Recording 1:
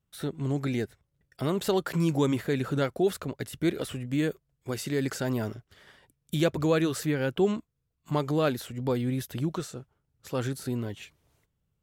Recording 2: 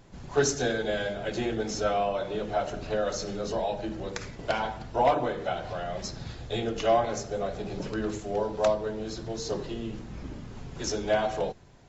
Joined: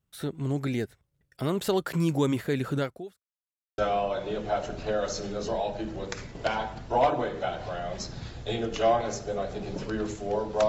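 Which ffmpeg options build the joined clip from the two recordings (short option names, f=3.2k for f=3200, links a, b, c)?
-filter_complex "[0:a]apad=whole_dur=10.68,atrim=end=10.68,asplit=2[a][b];[a]atrim=end=3.23,asetpts=PTS-STARTPTS,afade=t=out:st=2.77:d=0.46:c=qua[c];[b]atrim=start=3.23:end=3.78,asetpts=PTS-STARTPTS,volume=0[d];[1:a]atrim=start=1.82:end=8.72,asetpts=PTS-STARTPTS,afade=t=in:d=0.004:c=hsin[e];[c][d][e]concat=n=3:v=0:a=1"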